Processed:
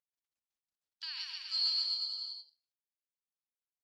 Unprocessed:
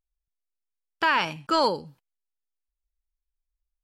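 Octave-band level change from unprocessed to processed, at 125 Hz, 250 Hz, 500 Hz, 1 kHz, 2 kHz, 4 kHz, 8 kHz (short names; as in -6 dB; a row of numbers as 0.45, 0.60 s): under -40 dB, under -40 dB, under -40 dB, -35.0 dB, -23.5 dB, +1.0 dB, n/a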